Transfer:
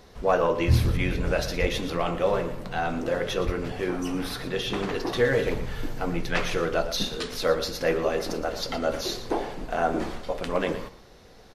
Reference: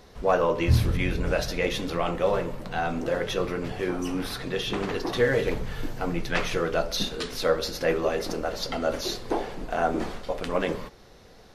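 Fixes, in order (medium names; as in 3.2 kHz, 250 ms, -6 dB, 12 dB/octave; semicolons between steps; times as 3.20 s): 1.60–1.72 s: high-pass 140 Hz 24 dB/octave; 3.45–3.57 s: high-pass 140 Hz 24 dB/octave; inverse comb 116 ms -13.5 dB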